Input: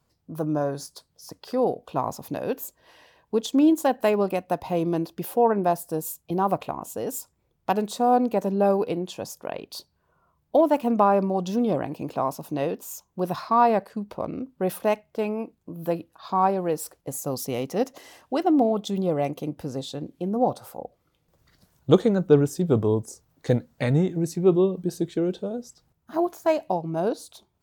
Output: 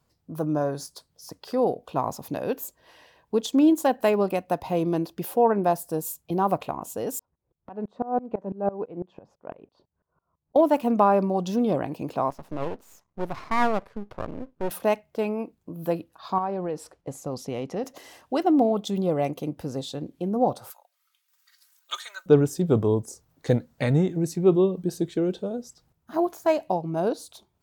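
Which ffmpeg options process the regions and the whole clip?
-filter_complex "[0:a]asettb=1/sr,asplit=3[a][b][c];[a]atrim=end=7.194[d];[b]atrim=start=7.19:end=10.56,asetpts=PTS-STARTPTS,afade=t=in:d=0.004:c=qsin,afade=t=out:st=3.366:d=0.004:c=qsin,lowpass=1.4k,aeval=exprs='val(0)*pow(10,-23*if(lt(mod(-6*n/s,1),2*abs(-6)/1000),1-mod(-6*n/s,1)/(2*abs(-6)/1000),(mod(-6*n/s,1)-2*abs(-6)/1000)/(1-2*abs(-6)/1000))/20)':c=same[e];[c]atrim=start=10.556[f];[d][e]acrossfade=d=0.004:c1=hsin:c2=qsin[g];[g][f]acrossfade=d=0.004:c1=qsin:c2=hsin,asettb=1/sr,asplit=3[h][i][j];[h]atrim=end=12.304[k];[i]atrim=start=12.3:end=14.71,asetpts=PTS-STARTPTS,afade=t=in:d=0.004:c=qsin,afade=t=out:st=2.406:d=0.004:c=qsin,lowpass=f=2.1k:p=1,aeval=exprs='max(val(0),0)':c=same[l];[j]atrim=start=14.706[m];[k][l]acrossfade=d=0.004:c1=hsin:c2=qsin[n];[n][m]acrossfade=d=0.004:c1=qsin:c2=hsin,asettb=1/sr,asplit=3[o][p][q];[o]atrim=end=16.384[r];[p]atrim=start=16.38:end=17.84,asetpts=PTS-STARTPTS,afade=t=in:d=0.004:c=qsin,afade=t=out:st=1.456:d=0.004:c=qsin,lowpass=11k,aemphasis=mode=reproduction:type=50kf,acompressor=threshold=-26dB:ratio=3:attack=3.2:release=140:knee=1:detection=peak[s];[q]atrim=start=17.836[t];[r][s]acrossfade=d=0.004:c1=hsin:c2=qsin[u];[u][t]acrossfade=d=0.004:c1=qsin:c2=hsin,asettb=1/sr,asplit=3[v][w][x];[v]atrim=end=20.704[y];[w]atrim=start=20.7:end=22.26,asetpts=PTS-STARTPTS,afade=t=in:d=0.004:c=qsin,afade=t=out:st=1.556:d=0.004:c=qsin,highpass=f=1.3k:w=0.5412,highpass=f=1.3k:w=1.3066,highshelf=f=5.7k:g=6.5,aecho=1:1:3.2:0.62,atrim=end_sample=68796[z];[x]atrim=start=22.256[aa];[y][z]acrossfade=d=0.004:c1=hsin:c2=qsin[ab];[ab][aa]acrossfade=d=0.004:c1=qsin:c2=hsin"

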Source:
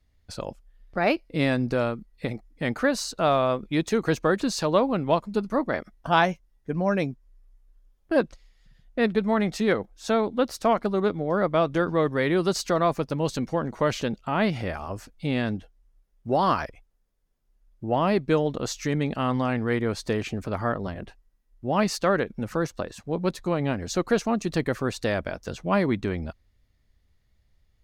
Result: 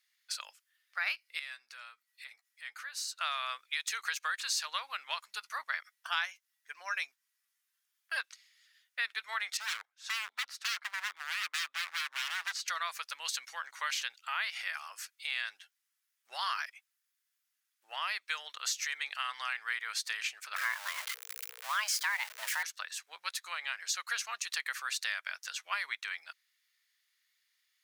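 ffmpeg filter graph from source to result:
-filter_complex "[0:a]asettb=1/sr,asplit=3[a][b][c];[a]atrim=end=1.394[d];[b]atrim=start=1.39:end=3.21,asetpts=PTS-STARTPTS,afade=t=in:d=0.004:c=qsin,afade=t=out:st=1.816:d=0.004:c=qsin,acompressor=threshold=-48dB:ratio=2:attack=3.2:release=140:knee=1:detection=peak,asplit=2[e][f];[f]adelay=13,volume=-10.5dB[g];[e][g]amix=inputs=2:normalize=0,atrim=end_sample=80262[h];[c]atrim=start=3.206[i];[d][h]acrossfade=d=0.004:c1=hsin:c2=qsin[j];[j][i]acrossfade=d=0.004:c1=qsin:c2=hsin,asettb=1/sr,asplit=3[k][l][m];[k]atrim=end=9.574[n];[l]atrim=start=9.57:end=12.68,asetpts=PTS-STARTPTS,afade=t=in:d=0.004:c=qsin,afade=t=out:st=3.106:d=0.004:c=qsin,lowpass=f=1.3k:p=1,aeval=exprs='0.0422*(abs(mod(val(0)/0.0422+3,4)-2)-1)':c=same[o];[m]atrim=start=12.676[p];[n][o]acrossfade=d=0.004:c1=hsin:c2=qsin[q];[q][p]acrossfade=d=0.004:c1=qsin:c2=hsin,asettb=1/sr,asplit=3[r][s][t];[r]atrim=end=20.564[u];[s]atrim=start=20.56:end=22.63,asetpts=PTS-STARTPTS,afade=t=in:d=0.004:c=qsin,afade=t=out:st=2.066:d=0.004:c=qsin,aeval=exprs='val(0)+0.5*0.0237*sgn(val(0))':c=same,afreqshift=420[v];[t]atrim=start=22.626[w];[u][v]acrossfade=d=0.004:c1=hsin:c2=qsin[x];[x][w]acrossfade=d=0.004:c1=qsin:c2=hsin,highpass=f=1.5k:w=0.5412,highpass=f=1.5k:w=1.3066,highshelf=f=8.3k:g=4.5,acompressor=threshold=-35dB:ratio=3,volume=3.5dB"

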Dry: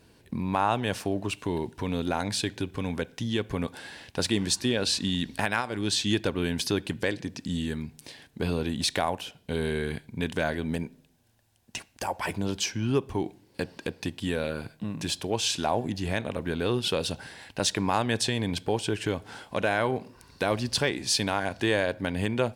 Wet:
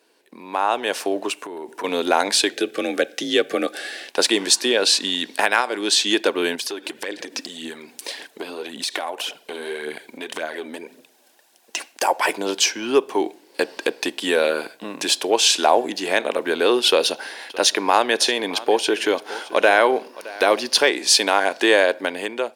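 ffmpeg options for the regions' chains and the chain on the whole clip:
-filter_complex "[0:a]asettb=1/sr,asplit=3[a][b][c];[a]atrim=end=1.324[d];[b]atrim=start=1.32:end=1.84,asetpts=PTS-STARTPTS,afade=t=in:d=0.004:c=qsin,afade=t=out:st=0.516:d=0.004:c=qsin,equalizer=f=3.8k:t=o:w=1.2:g=-8.5,acompressor=threshold=-34dB:ratio=12:attack=3.2:release=140:knee=1:detection=peak[e];[c]atrim=start=1.836[f];[d][e]acrossfade=d=0.004:c1=hsin:c2=qsin[g];[g][f]acrossfade=d=0.004:c1=qsin:c2=hsin,asettb=1/sr,asplit=3[h][i][j];[h]atrim=end=2.524[k];[i]atrim=start=2.52:end=4.08,asetpts=PTS-STARTPTS,afade=t=in:d=0.004:c=qsin,afade=t=out:st=1.556:d=0.004:c=qsin,afreqshift=44,asuperstop=centerf=970:order=8:qfactor=3.2[l];[j]atrim=start=4.076[m];[k][l]acrossfade=d=0.004:c1=hsin:c2=qsin[n];[n][m]acrossfade=d=0.004:c1=qsin:c2=hsin,asettb=1/sr,asplit=3[o][p][q];[o]atrim=end=6.554[r];[p]atrim=start=6.55:end=11.92,asetpts=PTS-STARTPTS,afade=t=in:d=0.004:c=qsin,afade=t=out:st=5.366:d=0.004:c=qsin,acompressor=threshold=-35dB:ratio=10:attack=3.2:release=140:knee=1:detection=peak,aphaser=in_gain=1:out_gain=1:delay=4:decay=0.48:speed=1.8:type=triangular[s];[q]atrim=start=11.916[t];[r][s]acrossfade=d=0.004:c1=hsin:c2=qsin[u];[u][t]acrossfade=d=0.004:c1=qsin:c2=hsin,asettb=1/sr,asplit=3[v][w][x];[v]atrim=end=16.884[y];[w]atrim=start=16.88:end=20.82,asetpts=PTS-STARTPTS,afade=t=in:d=0.004:c=qsin,afade=t=out:st=3.936:d=0.004:c=qsin,bandreject=f=7.8k:w=5.3,aecho=1:1:618:0.119,atrim=end_sample=173754[z];[x]atrim=start=20.816[aa];[y][z]acrossfade=d=0.004:c1=hsin:c2=qsin[ab];[ab][aa]acrossfade=d=0.004:c1=qsin:c2=hsin,highpass=f=340:w=0.5412,highpass=f=340:w=1.3066,dynaudnorm=f=210:g=7:m=13dB"

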